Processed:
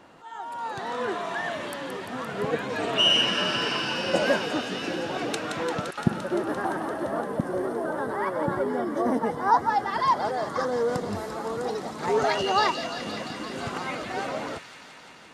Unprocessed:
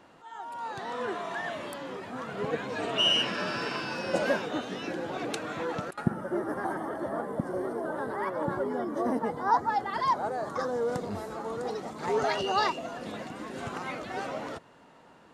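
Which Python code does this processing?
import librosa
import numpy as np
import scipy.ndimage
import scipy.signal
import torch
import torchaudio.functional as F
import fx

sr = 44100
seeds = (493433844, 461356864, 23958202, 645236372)

y = fx.echo_wet_highpass(x, sr, ms=172, feedback_pct=81, hz=2200.0, wet_db=-7.0)
y = y * librosa.db_to_amplitude(4.0)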